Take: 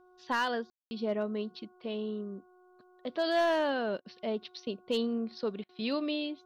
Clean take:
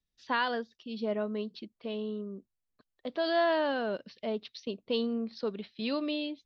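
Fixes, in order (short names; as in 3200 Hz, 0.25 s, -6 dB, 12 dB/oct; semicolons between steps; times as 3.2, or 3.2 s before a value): clip repair -22.5 dBFS; de-hum 364.4 Hz, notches 4; room tone fill 0.7–0.91; interpolate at 4/5.64, 49 ms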